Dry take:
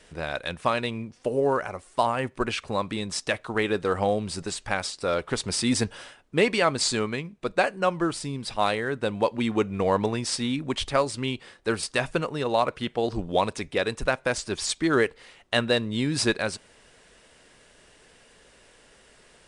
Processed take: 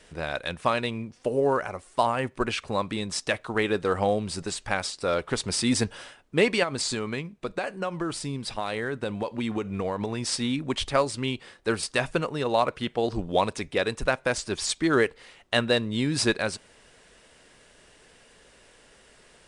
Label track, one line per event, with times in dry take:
6.630000	10.210000	compression 10:1, threshold -24 dBFS

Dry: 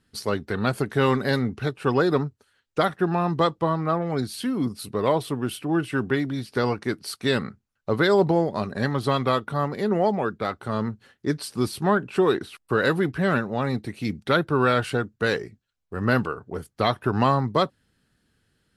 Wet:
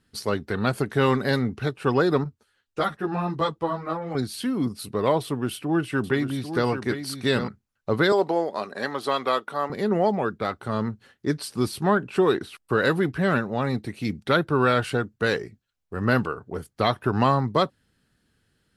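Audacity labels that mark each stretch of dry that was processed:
2.240000	4.150000	three-phase chorus
5.240000	7.480000	delay 796 ms -9 dB
8.120000	9.700000	high-pass 390 Hz

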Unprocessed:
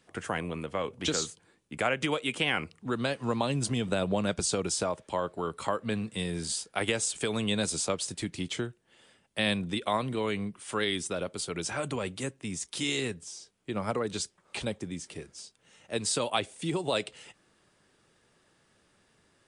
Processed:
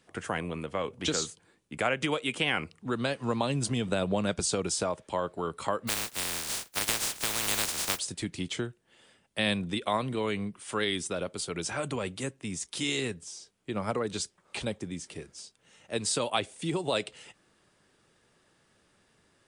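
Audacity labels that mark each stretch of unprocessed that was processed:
5.870000	7.980000	spectral contrast reduction exponent 0.12

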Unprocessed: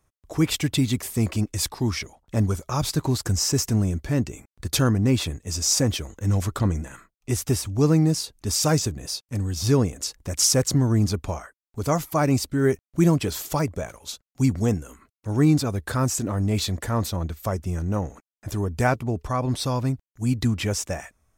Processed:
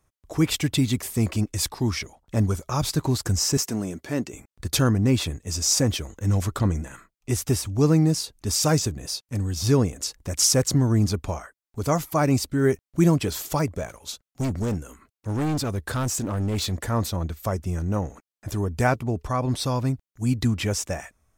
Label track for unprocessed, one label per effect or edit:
3.570000	4.330000	high-pass 230 Hz
13.710000	16.730000	overload inside the chain gain 22 dB

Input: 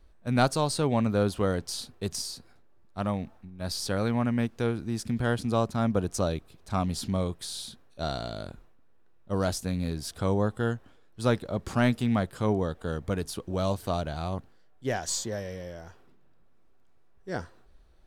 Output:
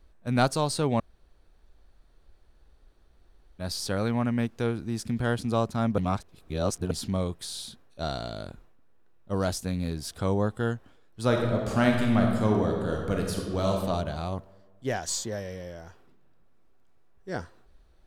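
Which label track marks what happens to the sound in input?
1.000000	3.590000	room tone
5.980000	6.910000	reverse
11.260000	13.720000	reverb throw, RT60 1.6 s, DRR 0.5 dB

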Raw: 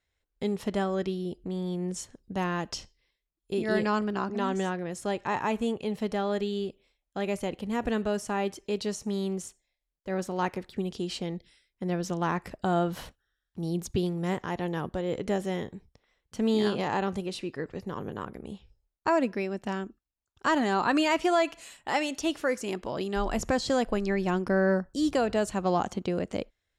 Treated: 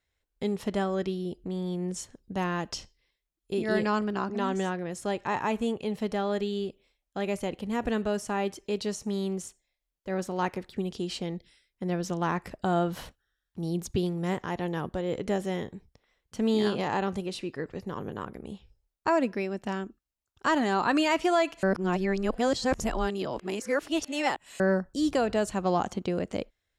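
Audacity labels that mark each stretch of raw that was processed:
21.630000	24.600000	reverse

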